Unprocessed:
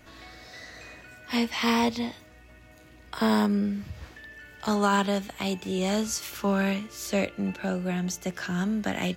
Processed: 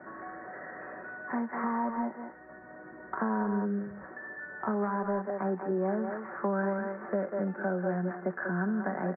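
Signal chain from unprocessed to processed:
stylus tracing distortion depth 0.43 ms
high-pass filter 250 Hz 12 dB per octave
far-end echo of a speakerphone 190 ms, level −7 dB
downward compressor, threshold −28 dBFS, peak gain reduction 9 dB
Butterworth low-pass 1,800 Hz 72 dB per octave
comb filter 5.3 ms, depth 49%
multiband upward and downward compressor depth 40%

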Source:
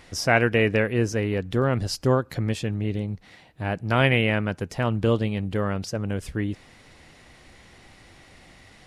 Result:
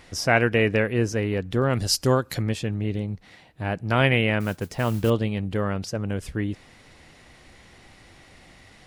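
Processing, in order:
0:01.69–0:02.41: high-shelf EQ 4,100 Hz → 2,700 Hz +11.5 dB
0:04.40–0:05.10: noise that follows the level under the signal 22 dB

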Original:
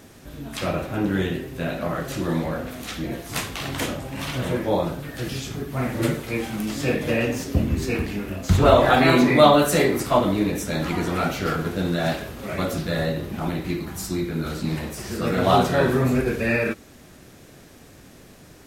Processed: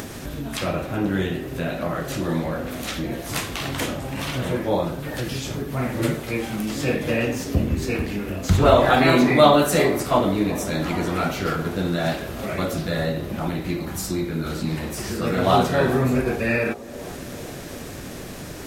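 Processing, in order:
upward compression, threshold −23 dBFS
on a send: delay with a band-pass on its return 386 ms, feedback 66%, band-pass 530 Hz, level −15 dB

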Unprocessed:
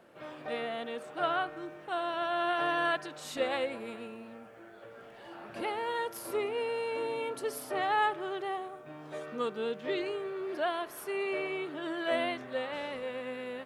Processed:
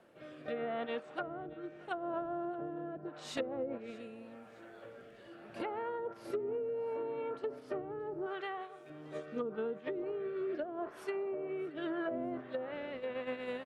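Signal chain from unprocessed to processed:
dynamic equaliser 1,400 Hz, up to +6 dB, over −52 dBFS, Q 6.2
noise gate −38 dBFS, range −10 dB
0:08.26–0:08.90: spectral tilt +3 dB per octave
treble cut that deepens with the level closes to 370 Hz, closed at −27.5 dBFS
downward compressor 3 to 1, threshold −45 dBFS, peak gain reduction 12.5 dB
rotating-speaker cabinet horn 0.8 Hz
on a send: repeating echo 626 ms, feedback 45%, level −21.5 dB
on the sum: level +9 dB

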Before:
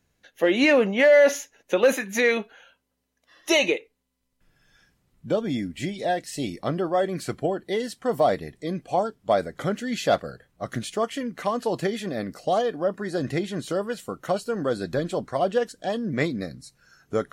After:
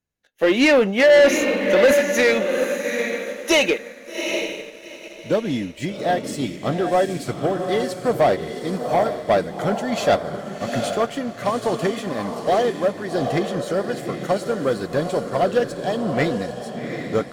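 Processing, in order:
feedback delay with all-pass diffusion 777 ms, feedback 40%, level −5 dB
leveller curve on the samples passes 2
expander for the loud parts 1.5 to 1, over −32 dBFS

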